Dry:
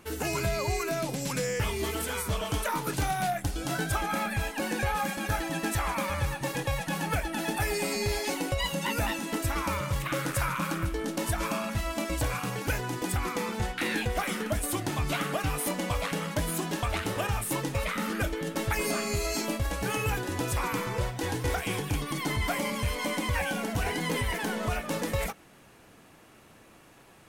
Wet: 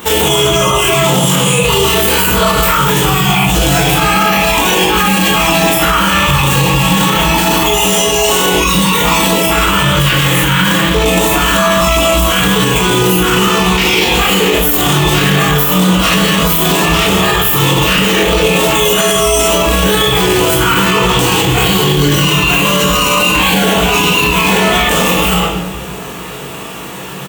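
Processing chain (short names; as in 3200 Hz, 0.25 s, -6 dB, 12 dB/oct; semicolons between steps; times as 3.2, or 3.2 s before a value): rattling part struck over -37 dBFS, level -28 dBFS; negative-ratio compressor -31 dBFS, ratio -0.5; HPF 73 Hz 12 dB/oct; high shelf 10000 Hz +9.5 dB; shoebox room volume 400 m³, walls mixed, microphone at 1.7 m; in parallel at -8 dB: soft clip -22.5 dBFS, distortion -14 dB; on the sum: formant shift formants +3 st; ripple EQ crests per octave 0.74, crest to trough 8 dB; formant shift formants +2 st; on a send: early reflections 21 ms -3 dB, 38 ms -4.5 dB; on the sum: maximiser +17.5 dB; gain -1 dB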